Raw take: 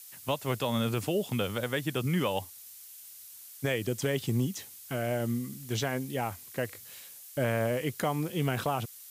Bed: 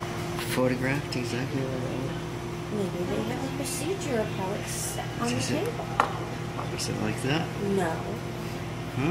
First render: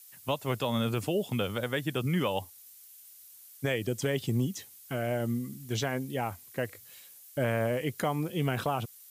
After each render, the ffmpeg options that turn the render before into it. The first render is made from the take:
-af "afftdn=nr=6:nf=-49"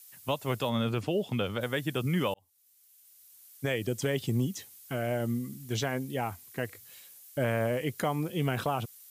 -filter_complex "[0:a]asettb=1/sr,asplit=3[s0][s1][s2];[s0]atrim=end=0.694[s3];[s1]atrim=start=0.69:end=1.61,asetpts=PTS-STARTPTS,afade=t=in:d=0.004:c=qsin,afade=t=out:st=0.916:d=0.004:c=qsin,acrossover=split=5400[s4][s5];[s5]acompressor=threshold=0.00126:ratio=4:attack=1:release=60[s6];[s4][s6]amix=inputs=2:normalize=0[s7];[s2]atrim=start=1.606[s8];[s3][s7]acrossfade=d=0.004:c1=hsin:c2=qsin[s9];[s9][s8]acrossfade=d=0.004:c1=qsin:c2=hsin,asettb=1/sr,asplit=3[s10][s11][s12];[s10]atrim=end=6.264[s13];[s11]atrim=start=6.26:end=6.89,asetpts=PTS-STARTPTS,afade=t=in:d=0.004:c=qsin,afade=t=out:st=0.626:d=0.004:c=qsin,bandreject=f=560:w=5.2[s14];[s12]atrim=start=6.886[s15];[s13][s14]acrossfade=d=0.004:c1=hsin:c2=qsin[s16];[s16][s15]acrossfade=d=0.004:c1=qsin:c2=hsin,asplit=2[s17][s18];[s17]atrim=end=2.34,asetpts=PTS-STARTPTS,afade=t=out:st=2.336:d=0.004:c=hsin[s19];[s18]atrim=start=2.34,asetpts=PTS-STARTPTS,afade=t=in:d=1.47[s20];[s19][s20]concat=n=2:v=0:a=1"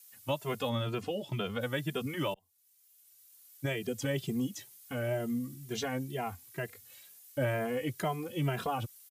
-filter_complex "[0:a]asplit=2[s0][s1];[s1]adelay=2.5,afreqshift=2.1[s2];[s0][s2]amix=inputs=2:normalize=1"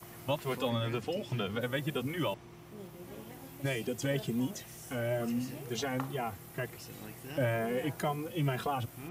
-filter_complex "[1:a]volume=0.126[s0];[0:a][s0]amix=inputs=2:normalize=0"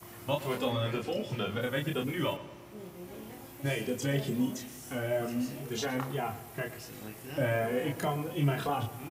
-filter_complex "[0:a]asplit=2[s0][s1];[s1]adelay=28,volume=0.668[s2];[s0][s2]amix=inputs=2:normalize=0,asplit=2[s3][s4];[s4]adelay=115,lowpass=f=3500:p=1,volume=0.2,asplit=2[s5][s6];[s6]adelay=115,lowpass=f=3500:p=1,volume=0.53,asplit=2[s7][s8];[s8]adelay=115,lowpass=f=3500:p=1,volume=0.53,asplit=2[s9][s10];[s10]adelay=115,lowpass=f=3500:p=1,volume=0.53,asplit=2[s11][s12];[s12]adelay=115,lowpass=f=3500:p=1,volume=0.53[s13];[s3][s5][s7][s9][s11][s13]amix=inputs=6:normalize=0"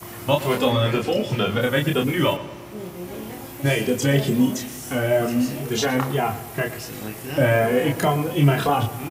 -af "volume=3.76"

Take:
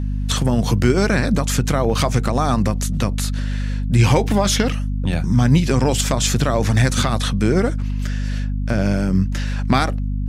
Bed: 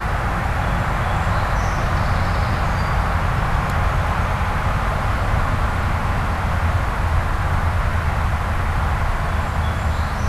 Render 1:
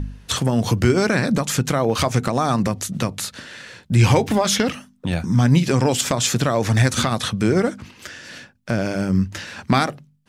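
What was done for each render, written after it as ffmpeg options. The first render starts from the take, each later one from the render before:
-af "bandreject=f=50:t=h:w=4,bandreject=f=100:t=h:w=4,bandreject=f=150:t=h:w=4,bandreject=f=200:t=h:w=4,bandreject=f=250:t=h:w=4"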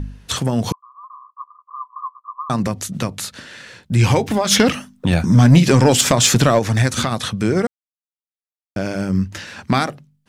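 -filter_complex "[0:a]asettb=1/sr,asplit=3[s0][s1][s2];[s0]atrim=end=0.724[s3];[s1]atrim=start=0.72:end=2.5,asetpts=PTS-STARTPTS,afade=t=in:d=0.004:c=qsin,afade=t=out:st=1.776:d=0.004:c=qsin,asuperpass=centerf=1100:order=12:qfactor=5[s4];[s2]atrim=start=2.496[s5];[s3][s4]acrossfade=d=0.004:c1=hsin:c2=qsin[s6];[s6][s5]acrossfade=d=0.004:c1=qsin:c2=hsin,asplit=3[s7][s8][s9];[s7]afade=t=out:st=4.5:d=0.02[s10];[s8]acontrast=79,afade=t=in:st=4.5:d=0.02,afade=t=out:st=6.58:d=0.02[s11];[s9]afade=t=in:st=6.58:d=0.02[s12];[s10][s11][s12]amix=inputs=3:normalize=0,asplit=3[s13][s14][s15];[s13]atrim=end=7.67,asetpts=PTS-STARTPTS,afade=t=out:st=7.666:d=0.004:c=hsin[s16];[s14]atrim=start=7.67:end=8.76,asetpts=PTS-STARTPTS,volume=0[s17];[s15]atrim=start=8.76,asetpts=PTS-STARTPTS,afade=t=in:d=0.004:c=hsin[s18];[s16][s17][s18]concat=n=3:v=0:a=1"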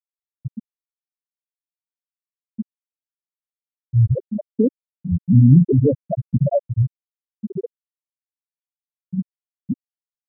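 -af "afftfilt=real='re*gte(hypot(re,im),1.58)':imag='im*gte(hypot(re,im),1.58)':win_size=1024:overlap=0.75,highshelf=f=3300:g=10"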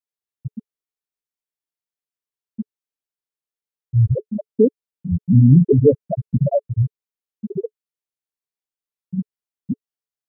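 -af "equalizer=f=430:w=7.1:g=8"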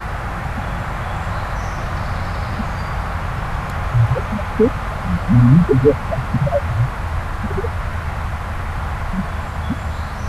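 -filter_complex "[1:a]volume=0.668[s0];[0:a][s0]amix=inputs=2:normalize=0"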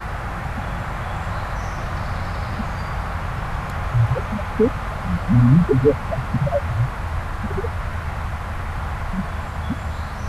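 -af "volume=0.708"

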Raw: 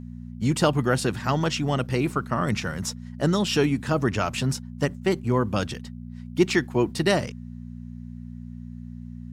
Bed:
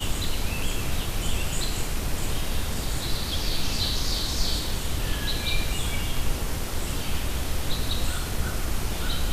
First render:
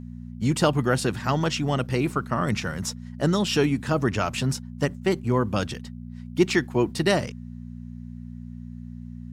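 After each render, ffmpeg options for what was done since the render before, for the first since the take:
-af anull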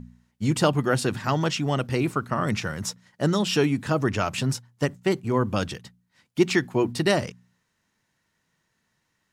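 -af "bandreject=f=60:t=h:w=4,bandreject=f=120:t=h:w=4,bandreject=f=180:t=h:w=4,bandreject=f=240:t=h:w=4"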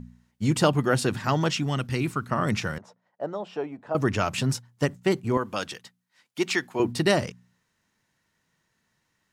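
-filter_complex "[0:a]asettb=1/sr,asplit=3[s0][s1][s2];[s0]atrim=end=1.634[s3];[s1]atrim=start=1.63:end=2.27,asetpts=PTS-STARTPTS,afade=t=in:d=0.004:c=qsin,afade=t=out:st=0.636:d=0.004:c=qsin,equalizer=f=570:w=0.9:g=-8[s4];[s2]atrim=start=2.266[s5];[s3][s4]acrossfade=d=0.004:c1=hsin:c2=qsin[s6];[s6][s5]acrossfade=d=0.004:c1=qsin:c2=hsin,asettb=1/sr,asplit=3[s7][s8][s9];[s7]atrim=end=2.784[s10];[s8]atrim=start=2.78:end=3.95,asetpts=PTS-STARTPTS,afade=t=in:d=0.004:c=qsin,afade=t=out:st=1.166:d=0.004:c=qsin,bandpass=f=670:t=q:w=2.4[s11];[s9]atrim=start=3.946[s12];[s10][s11]acrossfade=d=0.004:c1=hsin:c2=qsin[s13];[s13][s12]acrossfade=d=0.004:c1=qsin:c2=hsin,asettb=1/sr,asplit=3[s14][s15][s16];[s14]atrim=end=5.374[s17];[s15]atrim=start=5.37:end=6.8,asetpts=PTS-STARTPTS,afade=t=in:d=0.004:c=qsin,afade=t=out:st=1.426:d=0.004:c=qsin,highpass=f=650:p=1[s18];[s16]atrim=start=6.796[s19];[s17][s18]acrossfade=d=0.004:c1=hsin:c2=qsin[s20];[s20][s19]acrossfade=d=0.004:c1=qsin:c2=hsin"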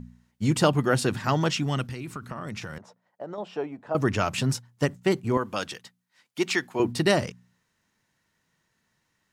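-filter_complex "[0:a]asettb=1/sr,asplit=3[s0][s1][s2];[s0]atrim=end=1.874[s3];[s1]atrim=start=1.87:end=3.38,asetpts=PTS-STARTPTS,afade=t=in:d=0.004:c=qsin,afade=t=out:st=1.506:d=0.004:c=qsin,acompressor=threshold=0.0282:ratio=10:attack=3.2:release=140:knee=1:detection=peak[s4];[s2]atrim=start=3.376[s5];[s3][s4]acrossfade=d=0.004:c1=hsin:c2=qsin[s6];[s6][s5]acrossfade=d=0.004:c1=qsin:c2=hsin"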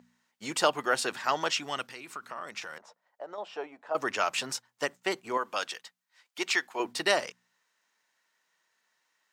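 -af "highpass=620,equalizer=f=11000:w=2.4:g=-5.5"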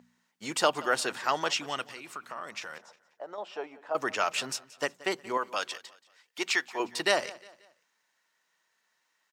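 -af "aecho=1:1:178|356|534:0.1|0.039|0.0152"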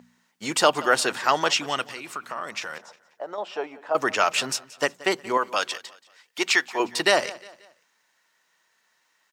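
-af "volume=2.24,alimiter=limit=0.708:level=0:latency=1"

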